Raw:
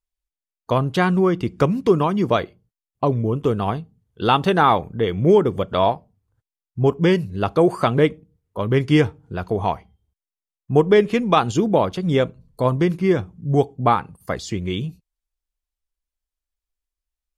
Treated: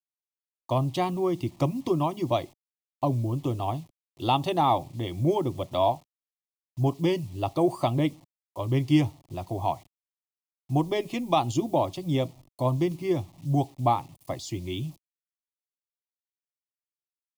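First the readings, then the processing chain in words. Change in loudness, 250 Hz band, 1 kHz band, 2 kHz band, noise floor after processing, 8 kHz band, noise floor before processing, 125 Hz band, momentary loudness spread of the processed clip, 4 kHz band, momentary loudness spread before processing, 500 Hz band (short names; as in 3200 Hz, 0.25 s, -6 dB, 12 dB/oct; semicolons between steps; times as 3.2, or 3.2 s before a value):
-7.5 dB, -7.0 dB, -6.0 dB, -13.5 dB, under -85 dBFS, n/a, under -85 dBFS, -5.5 dB, 10 LU, -6.5 dB, 11 LU, -9.5 dB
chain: requantised 8-bit, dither none; fixed phaser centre 300 Hz, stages 8; gain -4 dB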